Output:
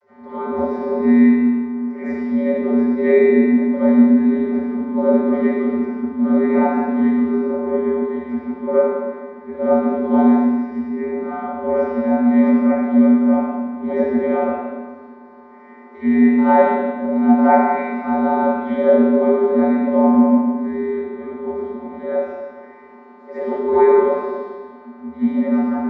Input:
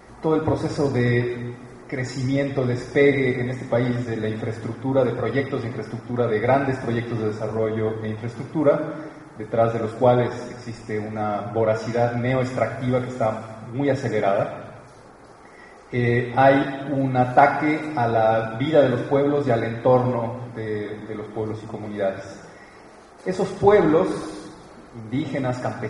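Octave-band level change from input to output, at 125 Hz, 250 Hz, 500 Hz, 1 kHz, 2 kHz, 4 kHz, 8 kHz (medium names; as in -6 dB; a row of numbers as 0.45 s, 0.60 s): under -10 dB, +10.5 dB, +3.0 dB, +2.5 dB, -2.0 dB, under -10 dB, no reading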